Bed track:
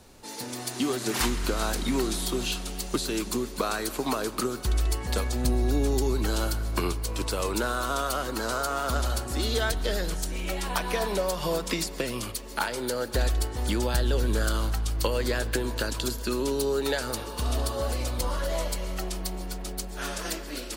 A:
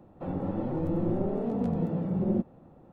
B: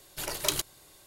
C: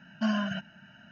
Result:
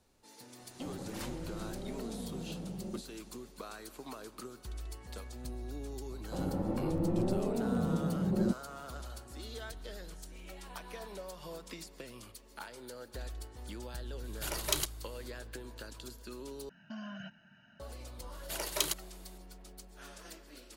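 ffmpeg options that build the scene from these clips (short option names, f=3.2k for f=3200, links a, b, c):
-filter_complex "[1:a]asplit=2[a][b];[2:a]asplit=2[c][d];[0:a]volume=-17.5dB[e];[a]acompressor=threshold=-29dB:ratio=6:attack=3.2:release=140:knee=1:detection=peak[f];[3:a]acompressor=threshold=-32dB:ratio=6:attack=3.2:release=140:knee=1:detection=peak[g];[d]highpass=170[h];[e]asplit=2[i][j];[i]atrim=end=16.694[k];[g]atrim=end=1.11,asetpts=PTS-STARTPTS,volume=-8.5dB[l];[j]atrim=start=17.796[m];[f]atrim=end=2.92,asetpts=PTS-STARTPTS,volume=-9dB,afade=t=in:d=0.004:c=hsin,afade=t=out:st=2.916:d=0.004:c=hsin,adelay=590[n];[b]atrim=end=2.92,asetpts=PTS-STARTPTS,volume=-3dB,afade=t=in:d=0.004:c=hsin,afade=t=out:st=2.916:d=0.004:c=hsin,adelay=6110[o];[c]atrim=end=1.06,asetpts=PTS-STARTPTS,volume=-3.5dB,afade=t=in:d=0.004:c=hsin,afade=t=out:st=1.056:d=0.004:c=hsin,adelay=14240[p];[h]atrim=end=1.06,asetpts=PTS-STARTPTS,volume=-3.5dB,afade=t=in:d=0.004:c=hsin,afade=t=out:st=1.056:d=0.004:c=hsin,adelay=18320[q];[k][l]acrossfade=d=0.004:c1=hsin:c2=hsin[r];[r][m]acrossfade=d=0.004:c1=hsin:c2=hsin[s];[s][n][o][p][q]amix=inputs=5:normalize=0"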